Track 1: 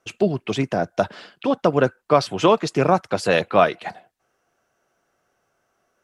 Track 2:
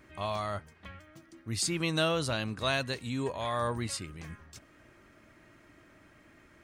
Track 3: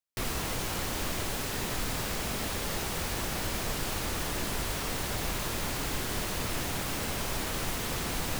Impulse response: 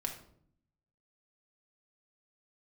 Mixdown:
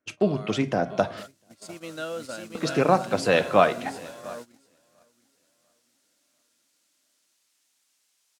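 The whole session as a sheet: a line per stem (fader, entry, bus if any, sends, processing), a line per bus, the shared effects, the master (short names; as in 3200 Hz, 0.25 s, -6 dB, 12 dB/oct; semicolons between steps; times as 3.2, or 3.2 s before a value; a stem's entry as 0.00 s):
-5.5 dB, 0.00 s, muted 1.23–2.55, send -6.5 dB, echo send -20 dB, dry
-11.5 dB, 0.00 s, no send, echo send -3 dB, bell 93 Hz -12 dB 2.1 oct; small resonant body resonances 260/520/1400 Hz, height 13 dB, ringing for 25 ms
-11.5 dB, 1.00 s, no send, no echo send, band-pass 7100 Hz, Q 0.96; vibrato 0.32 Hz 17 cents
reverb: on, RT60 0.60 s, pre-delay 4 ms
echo: feedback echo 0.694 s, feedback 38%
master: gate -39 dBFS, range -18 dB; HPF 45 Hz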